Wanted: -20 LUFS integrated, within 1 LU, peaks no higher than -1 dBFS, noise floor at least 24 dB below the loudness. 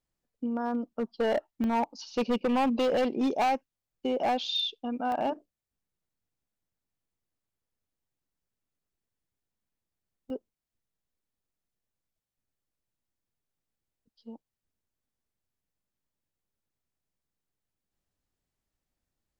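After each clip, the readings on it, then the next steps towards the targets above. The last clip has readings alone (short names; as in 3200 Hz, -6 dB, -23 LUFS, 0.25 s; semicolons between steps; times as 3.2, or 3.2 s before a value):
clipped 1.3%; flat tops at -22.5 dBFS; dropouts 3; longest dropout 1.2 ms; loudness -29.5 LUFS; peak -22.5 dBFS; loudness target -20.0 LUFS
-> clip repair -22.5 dBFS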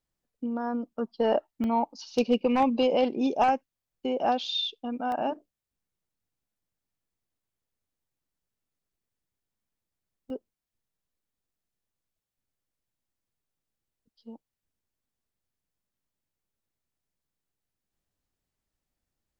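clipped 0.0%; dropouts 3; longest dropout 1.2 ms
-> interpolate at 1.64/5.12/10.3, 1.2 ms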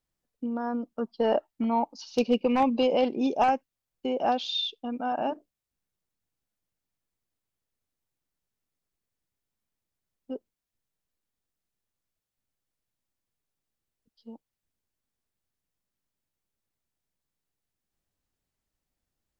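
dropouts 0; loudness -28.0 LUFS; peak -13.5 dBFS; loudness target -20.0 LUFS
-> gain +8 dB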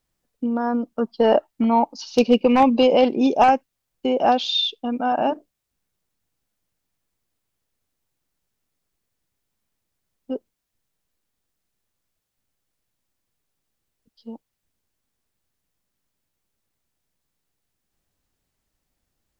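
loudness -20.0 LUFS; peak -5.5 dBFS; noise floor -80 dBFS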